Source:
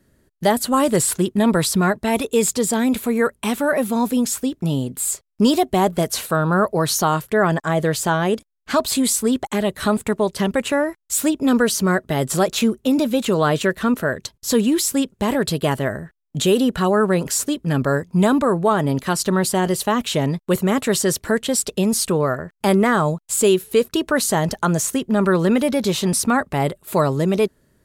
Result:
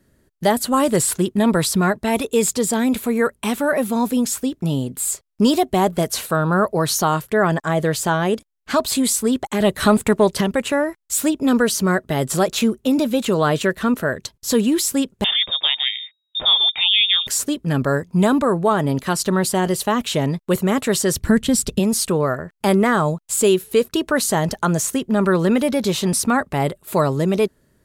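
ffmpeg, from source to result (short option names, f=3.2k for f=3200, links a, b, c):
-filter_complex "[0:a]asettb=1/sr,asplit=3[a][b][c];[a]atrim=end=9.604[d];[b]atrim=start=9.6:end=10.41,asetpts=PTS-STARTPTS,afade=t=in:d=0.004:c=qsin,afade=t=out:st=0.806:d=0.004:c=qsin,acontrast=24[e];[c]atrim=start=10.406[f];[d][e]acrossfade=d=0.004:c1=hsin:c2=qsin[g];[g][f]acrossfade=d=0.004:c1=qsin:c2=hsin,asettb=1/sr,asplit=3[h][i][j];[h]atrim=end=15.244[k];[i]atrim=start=15.24:end=17.27,asetpts=PTS-STARTPTS,afade=t=in:d=0.004:c=qsin,afade=t=out:st=2.026:d=0.004:c=qsin,lowpass=f=3.2k:t=q:w=0.5098,lowpass=f=3.2k:t=q:w=0.6013,lowpass=f=3.2k:t=q:w=0.9,lowpass=f=3.2k:t=q:w=2.563,afreqshift=-3800[l];[j]atrim=start=17.266[m];[k][l]acrossfade=d=0.004:c1=hsin:c2=qsin[n];[n][m]acrossfade=d=0.004:c1=qsin:c2=hsin,asplit=3[o][p][q];[o]afade=t=out:st=21.14:d=0.02[r];[p]asubboost=boost=6:cutoff=210,afade=t=in:st=21.14:d=0.02,afade=t=out:st=21.78:d=0.02[s];[q]afade=t=in:st=21.78:d=0.02[t];[r][s][t]amix=inputs=3:normalize=0"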